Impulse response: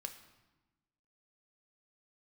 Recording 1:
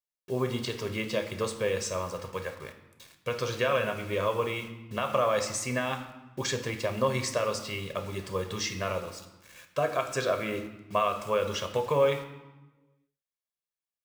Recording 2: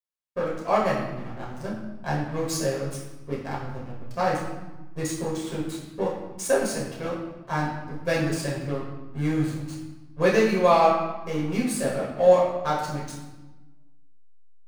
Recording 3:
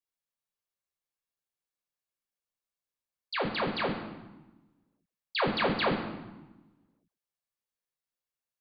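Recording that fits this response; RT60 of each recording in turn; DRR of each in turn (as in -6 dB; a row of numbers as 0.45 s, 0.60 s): 1; 1.1 s, 1.1 s, 1.1 s; 6.0 dB, -5.0 dB, 0.0 dB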